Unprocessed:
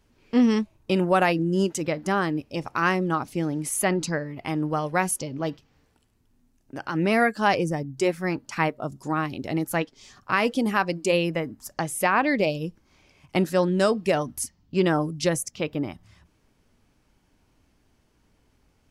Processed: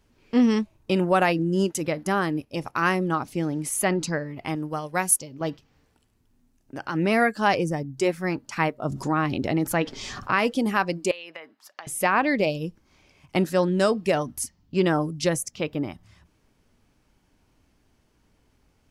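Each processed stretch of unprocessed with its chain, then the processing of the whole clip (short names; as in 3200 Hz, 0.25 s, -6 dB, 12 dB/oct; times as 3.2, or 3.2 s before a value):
1.71–3.08 bell 11000 Hz +11 dB 0.22 oct + gate -43 dBFS, range -7 dB
4.55–5.41 high shelf 6500 Hz +11 dB + upward expander, over -32 dBFS
8.85–10.39 high shelf 6600 Hz -10.5 dB + fast leveller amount 50%
11.11–11.87 HPF 820 Hz + resonant high shelf 5200 Hz -11 dB, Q 1.5 + compressor 12:1, threshold -34 dBFS
whole clip: dry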